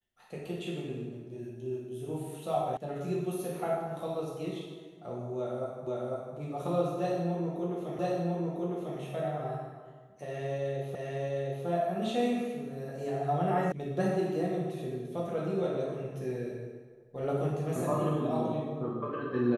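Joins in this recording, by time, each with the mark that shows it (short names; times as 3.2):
2.77 sound cut off
5.87 repeat of the last 0.5 s
7.99 repeat of the last 1 s
10.95 repeat of the last 0.71 s
13.72 sound cut off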